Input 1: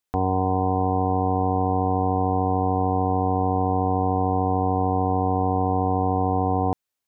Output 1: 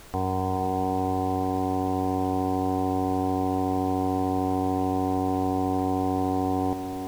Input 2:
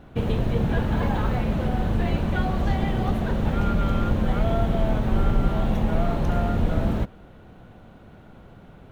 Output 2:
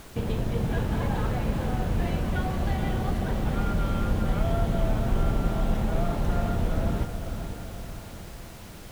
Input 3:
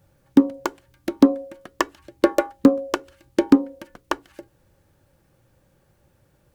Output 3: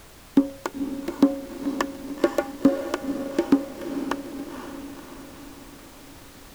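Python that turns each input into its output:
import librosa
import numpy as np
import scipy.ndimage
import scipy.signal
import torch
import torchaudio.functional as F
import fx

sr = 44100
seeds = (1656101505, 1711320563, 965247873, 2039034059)

y = fx.dmg_noise_colour(x, sr, seeds[0], colour='pink', level_db=-43.0)
y = fx.echo_diffused(y, sr, ms=503, feedback_pct=55, wet_db=-8.0)
y = F.gain(torch.from_numpy(y), -4.5).numpy()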